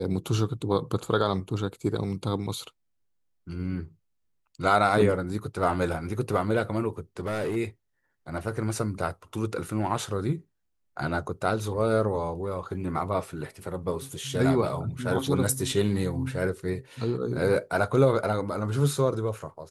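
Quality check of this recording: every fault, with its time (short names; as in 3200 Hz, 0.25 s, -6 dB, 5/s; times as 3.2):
7.2–7.57 clipped -25 dBFS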